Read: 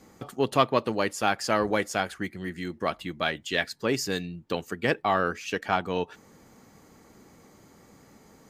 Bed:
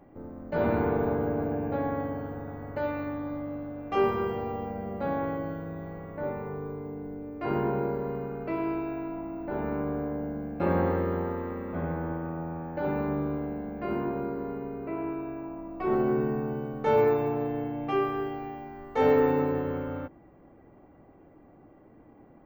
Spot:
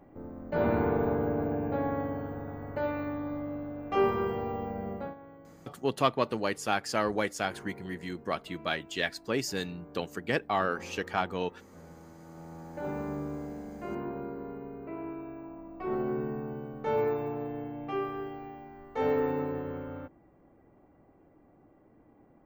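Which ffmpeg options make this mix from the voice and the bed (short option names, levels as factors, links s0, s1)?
-filter_complex "[0:a]adelay=5450,volume=0.631[s0];[1:a]volume=4.22,afade=t=out:st=4.91:d=0.24:silence=0.11885,afade=t=in:st=12.16:d=0.7:silence=0.211349[s1];[s0][s1]amix=inputs=2:normalize=0"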